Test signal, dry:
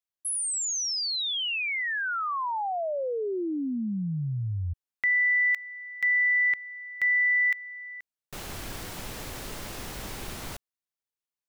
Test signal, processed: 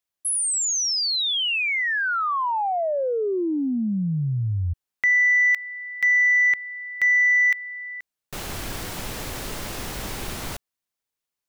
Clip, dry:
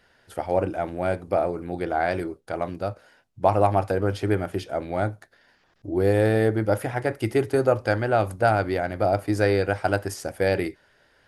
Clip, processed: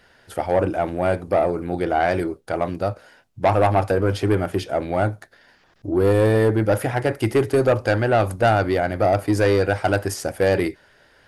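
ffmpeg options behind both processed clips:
ffmpeg -i in.wav -af "asoftclip=type=tanh:threshold=-16dB,volume=6dB" out.wav

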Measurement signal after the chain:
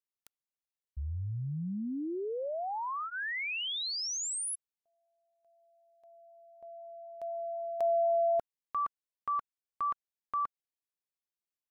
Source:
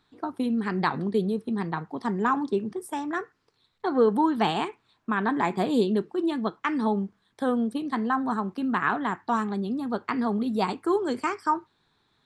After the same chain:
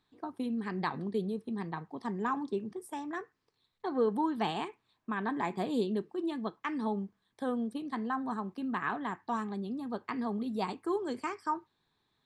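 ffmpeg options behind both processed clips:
ffmpeg -i in.wav -af "bandreject=frequency=1400:width=9.9,volume=-8dB" out.wav

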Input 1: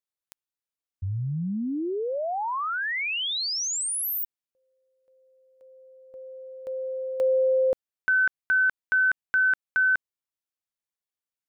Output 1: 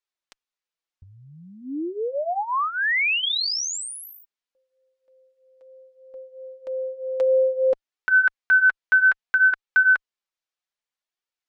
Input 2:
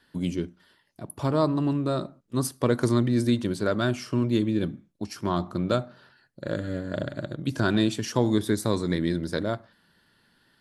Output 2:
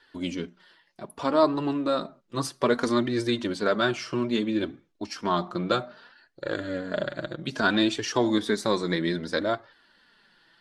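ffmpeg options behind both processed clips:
ffmpeg -i in.wav -af "lowpass=5600,equalizer=frequency=82:width=0.31:gain=-13.5,flanger=delay=2.1:depth=4.2:regen=-14:speed=0.62:shape=triangular,volume=8.5dB" out.wav

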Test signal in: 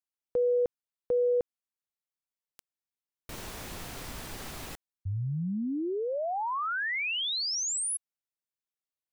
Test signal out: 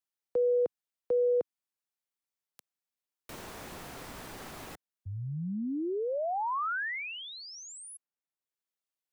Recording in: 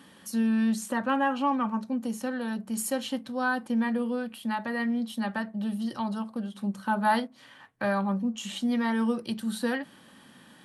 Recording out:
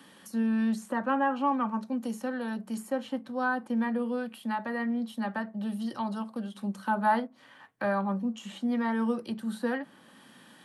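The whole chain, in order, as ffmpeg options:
ffmpeg -i in.wav -filter_complex "[0:a]lowshelf=frequency=110:gain=-11,acrossover=split=120|430|1900[link_01][link_02][link_03][link_04];[link_04]acompressor=threshold=-47dB:ratio=6:attack=16:release=624:detection=rms[link_05];[link_01][link_02][link_03][link_05]amix=inputs=4:normalize=0" out.wav

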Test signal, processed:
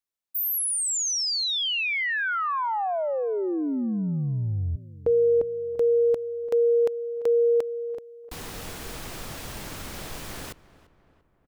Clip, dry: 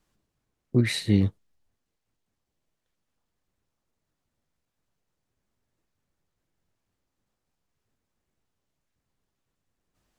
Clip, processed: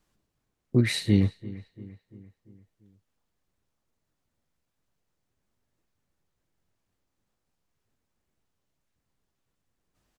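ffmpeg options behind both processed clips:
ffmpeg -i in.wav -filter_complex "[0:a]asplit=2[link_01][link_02];[link_02]adelay=343,lowpass=frequency=2200:poles=1,volume=-18dB,asplit=2[link_03][link_04];[link_04]adelay=343,lowpass=frequency=2200:poles=1,volume=0.54,asplit=2[link_05][link_06];[link_06]adelay=343,lowpass=frequency=2200:poles=1,volume=0.54,asplit=2[link_07][link_08];[link_08]adelay=343,lowpass=frequency=2200:poles=1,volume=0.54,asplit=2[link_09][link_10];[link_10]adelay=343,lowpass=frequency=2200:poles=1,volume=0.54[link_11];[link_01][link_03][link_05][link_07][link_09][link_11]amix=inputs=6:normalize=0" out.wav

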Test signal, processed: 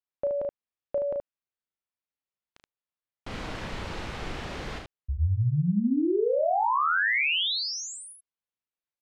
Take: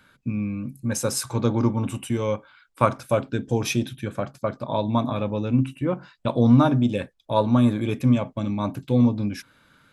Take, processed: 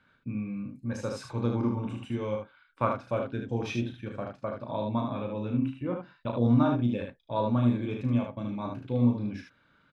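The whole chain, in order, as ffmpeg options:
ffmpeg -i in.wav -filter_complex "[0:a]lowpass=3500,asplit=2[link_01][link_02];[link_02]aecho=0:1:34|75:0.501|0.596[link_03];[link_01][link_03]amix=inputs=2:normalize=0,volume=-9dB" out.wav

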